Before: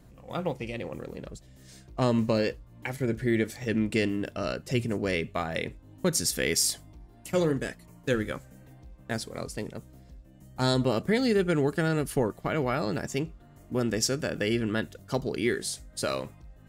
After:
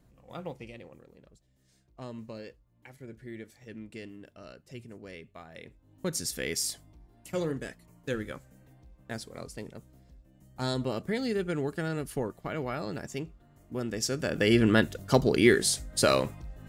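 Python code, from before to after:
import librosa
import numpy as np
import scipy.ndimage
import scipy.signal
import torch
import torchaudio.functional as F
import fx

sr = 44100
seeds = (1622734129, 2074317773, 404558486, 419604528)

y = fx.gain(x, sr, db=fx.line((0.63, -8.5), (1.06, -17.0), (5.52, -17.0), (6.09, -6.0), (13.93, -6.0), (14.63, 6.5)))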